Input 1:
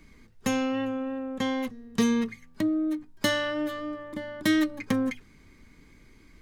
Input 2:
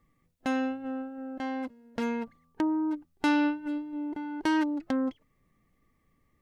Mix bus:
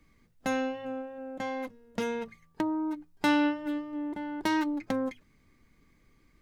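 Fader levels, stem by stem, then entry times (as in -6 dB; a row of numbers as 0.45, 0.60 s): -11.0, 0.0 dB; 0.00, 0.00 s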